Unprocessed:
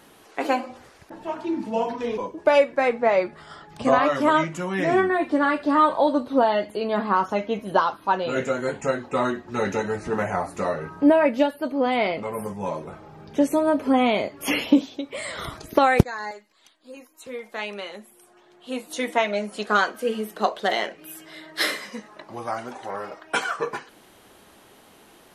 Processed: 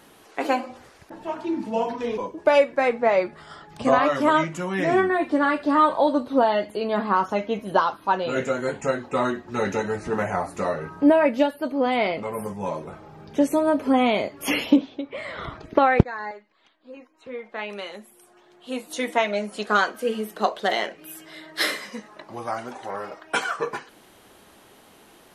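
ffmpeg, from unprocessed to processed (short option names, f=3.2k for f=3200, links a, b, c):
-filter_complex "[0:a]asettb=1/sr,asplit=3[a][b][c];[a]atrim=end=14.764[d];[b]atrim=start=14.76:end=17.7,asetpts=PTS-STARTPTS,afade=t=in:d=0.004:c=qsin,afade=t=out:st=2.936:d=0.004:c=qsin,lowpass=2.7k[e];[c]atrim=start=17.696[f];[d][e]acrossfade=d=0.004:c1=hsin:c2=qsin[g];[g][f]acrossfade=d=0.004:c1=qsin:c2=hsin"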